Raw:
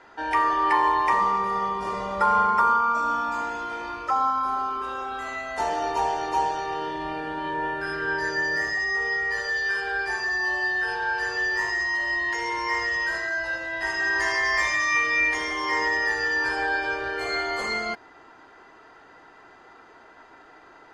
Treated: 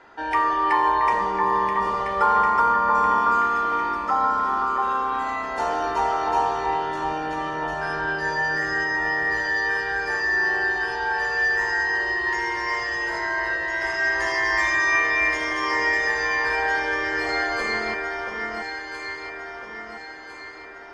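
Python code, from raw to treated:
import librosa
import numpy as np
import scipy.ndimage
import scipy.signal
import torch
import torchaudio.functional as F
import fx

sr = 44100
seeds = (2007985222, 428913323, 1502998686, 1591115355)

p1 = fx.high_shelf(x, sr, hz=6000.0, db=-6.0)
p2 = p1 + fx.echo_alternate(p1, sr, ms=677, hz=1800.0, feedback_pct=67, wet_db=-3.0, dry=0)
y = F.gain(torch.from_numpy(p2), 1.0).numpy()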